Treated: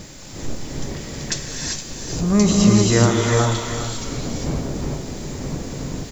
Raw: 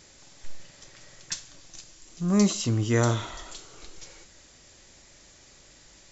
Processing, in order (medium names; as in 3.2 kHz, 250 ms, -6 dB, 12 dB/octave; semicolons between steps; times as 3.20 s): wind noise 260 Hz -41 dBFS; in parallel at +2.5 dB: compression, threshold -39 dBFS, peak gain reduction 21 dB; on the sum: word length cut 10-bit, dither none; on a send: delay 401 ms -9.5 dB; on the sum: gated-style reverb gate 420 ms rising, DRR -1 dB; trim +4 dB